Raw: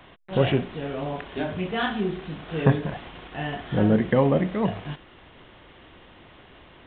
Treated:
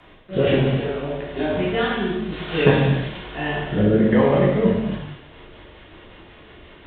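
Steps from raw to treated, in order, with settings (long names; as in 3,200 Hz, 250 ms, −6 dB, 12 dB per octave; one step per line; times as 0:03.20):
0:02.32–0:03.18: high-shelf EQ 2,300 Hz +11.5 dB
rotating-speaker cabinet horn 1.1 Hz, later 5.5 Hz, at 0:04.74
reverb whose tail is shaped and stops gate 380 ms falling, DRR −5.5 dB
level +1 dB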